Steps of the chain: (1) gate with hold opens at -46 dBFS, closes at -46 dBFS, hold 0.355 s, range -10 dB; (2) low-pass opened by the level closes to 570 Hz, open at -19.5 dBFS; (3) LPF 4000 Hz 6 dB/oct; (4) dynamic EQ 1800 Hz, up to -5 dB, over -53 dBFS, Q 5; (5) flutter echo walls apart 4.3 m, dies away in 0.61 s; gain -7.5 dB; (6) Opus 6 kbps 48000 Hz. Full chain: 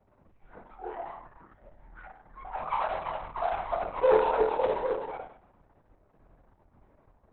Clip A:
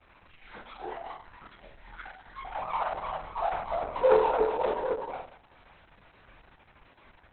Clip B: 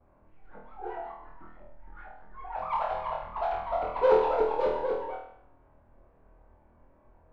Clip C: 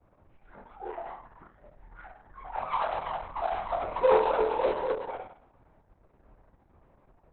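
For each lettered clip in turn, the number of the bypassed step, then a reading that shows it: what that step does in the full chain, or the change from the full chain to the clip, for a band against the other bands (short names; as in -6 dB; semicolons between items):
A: 2, 4 kHz band +1.5 dB; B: 6, 2 kHz band -2.0 dB; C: 3, 4 kHz band +2.0 dB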